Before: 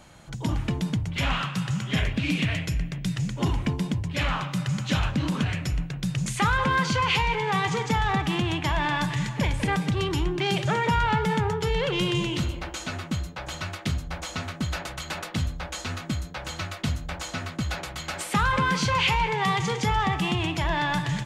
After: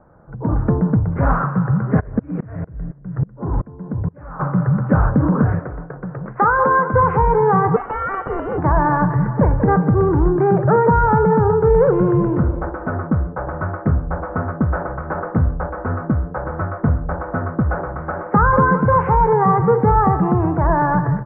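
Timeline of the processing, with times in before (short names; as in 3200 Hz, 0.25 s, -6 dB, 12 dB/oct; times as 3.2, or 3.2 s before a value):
1.99–4.39 dB-ramp tremolo swelling 5.5 Hz -> 1.6 Hz, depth 29 dB
5.59–6.94 tone controls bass -15 dB, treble -13 dB
7.76–8.58 inverted band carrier 3100 Hz
whole clip: steep low-pass 1500 Hz 48 dB/oct; bell 470 Hz +7 dB 0.49 oct; AGC gain up to 11 dB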